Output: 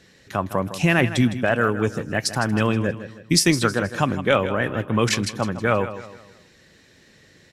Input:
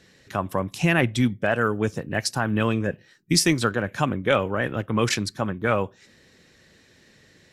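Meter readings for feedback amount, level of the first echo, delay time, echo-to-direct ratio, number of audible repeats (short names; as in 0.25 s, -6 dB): 40%, -12.5 dB, 0.159 s, -12.0 dB, 3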